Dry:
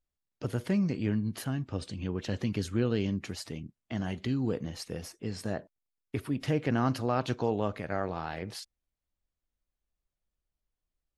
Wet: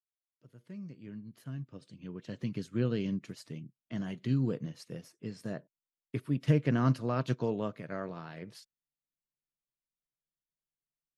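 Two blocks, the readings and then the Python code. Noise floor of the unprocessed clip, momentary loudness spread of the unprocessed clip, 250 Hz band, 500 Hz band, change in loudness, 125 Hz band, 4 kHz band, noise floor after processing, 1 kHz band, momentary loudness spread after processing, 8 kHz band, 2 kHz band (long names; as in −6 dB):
below −85 dBFS, 11 LU, −3.0 dB, −4.0 dB, −1.5 dB, −0.5 dB, −8.0 dB, below −85 dBFS, −6.0 dB, 18 LU, below −10 dB, −5.0 dB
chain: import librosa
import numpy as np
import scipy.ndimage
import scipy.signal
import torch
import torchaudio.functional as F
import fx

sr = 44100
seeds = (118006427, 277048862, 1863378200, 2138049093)

y = fx.fade_in_head(x, sr, length_s=3.26)
y = fx.notch(y, sr, hz=790.0, q=5.1)
y = fx.wow_flutter(y, sr, seeds[0], rate_hz=2.1, depth_cents=26.0)
y = fx.low_shelf_res(y, sr, hz=100.0, db=-10.0, q=3.0)
y = fx.upward_expand(y, sr, threshold_db=-45.0, expansion=1.5)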